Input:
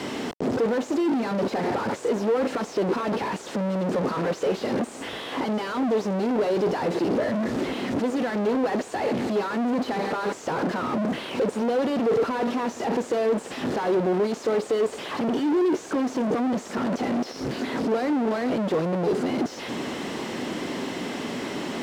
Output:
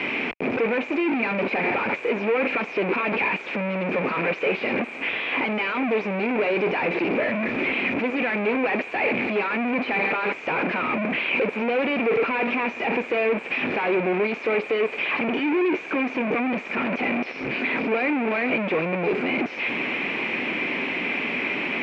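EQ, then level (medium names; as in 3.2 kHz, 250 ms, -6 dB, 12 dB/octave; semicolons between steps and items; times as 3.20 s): resonant low-pass 2.4 kHz, resonance Q 15; peaking EQ 83 Hz -8.5 dB 1.5 oct; 0.0 dB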